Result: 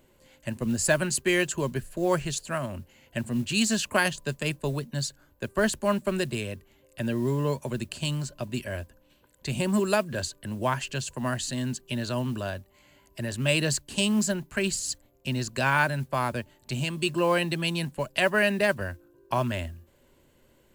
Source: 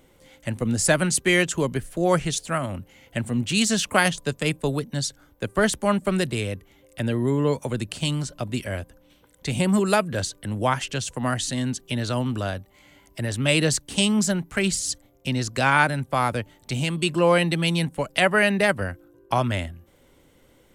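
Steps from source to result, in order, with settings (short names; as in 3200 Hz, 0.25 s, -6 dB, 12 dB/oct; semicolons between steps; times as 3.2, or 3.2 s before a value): ripple EQ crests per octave 1.4, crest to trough 6 dB; modulation noise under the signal 28 dB; gain -5 dB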